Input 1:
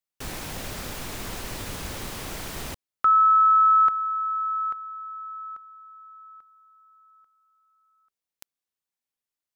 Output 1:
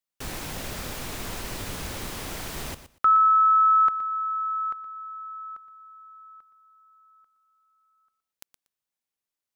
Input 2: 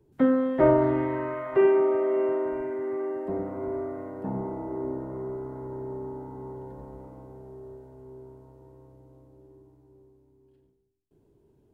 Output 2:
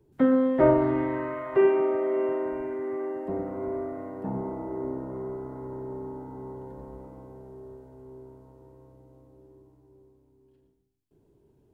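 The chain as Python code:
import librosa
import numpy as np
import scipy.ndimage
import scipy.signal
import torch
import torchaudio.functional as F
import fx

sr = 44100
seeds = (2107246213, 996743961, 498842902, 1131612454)

y = fx.echo_feedback(x, sr, ms=119, feedback_pct=18, wet_db=-13.0)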